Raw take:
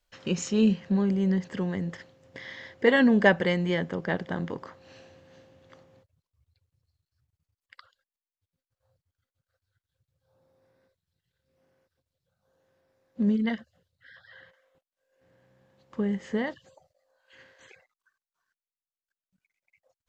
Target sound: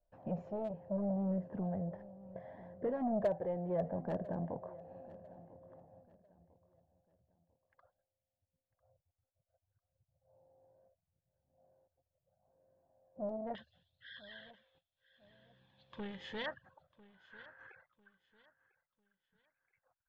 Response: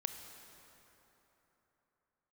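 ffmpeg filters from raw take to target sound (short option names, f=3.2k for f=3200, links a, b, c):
-af "aecho=1:1:1.2:0.34,alimiter=limit=-16dB:level=0:latency=1:release=482,asoftclip=type=tanh:threshold=-27.5dB,asetnsamples=n=441:p=0,asendcmd='13.55 lowpass f 3500;16.46 lowpass f 1400',lowpass=f=660:t=q:w=6,asoftclip=type=hard:threshold=-19dB,flanger=delay=0.6:depth=1.8:regen=-43:speed=0.71:shape=sinusoidal,aecho=1:1:998|1996|2994:0.106|0.0339|0.0108,volume=-3.5dB"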